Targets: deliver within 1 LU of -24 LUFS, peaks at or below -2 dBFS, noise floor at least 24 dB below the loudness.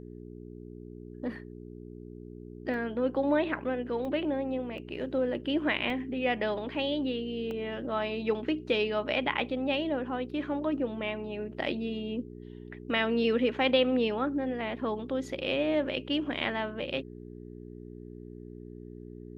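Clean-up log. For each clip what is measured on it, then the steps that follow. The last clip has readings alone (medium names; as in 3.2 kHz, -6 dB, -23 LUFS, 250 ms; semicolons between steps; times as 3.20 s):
dropouts 5; longest dropout 1.4 ms; hum 60 Hz; highest harmonic 420 Hz; hum level -44 dBFS; loudness -31.0 LUFS; peak level -12.0 dBFS; loudness target -24.0 LUFS
-> interpolate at 2.74/4.05/4.78/5.90/7.51 s, 1.4 ms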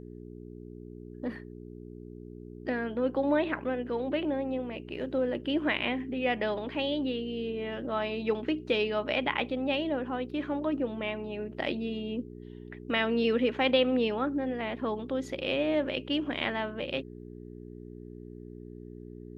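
dropouts 0; hum 60 Hz; highest harmonic 420 Hz; hum level -44 dBFS
-> de-hum 60 Hz, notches 7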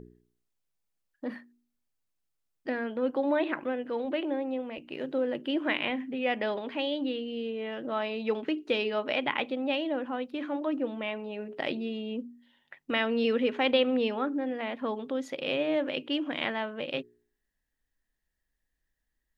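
hum not found; loudness -31.0 LUFS; peak level -11.5 dBFS; loudness target -24.0 LUFS
-> trim +7 dB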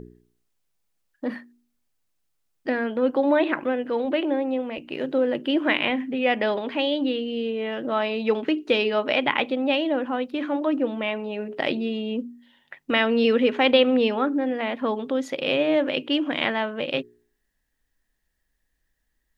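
loudness -24.0 LUFS; peak level -4.5 dBFS; noise floor -74 dBFS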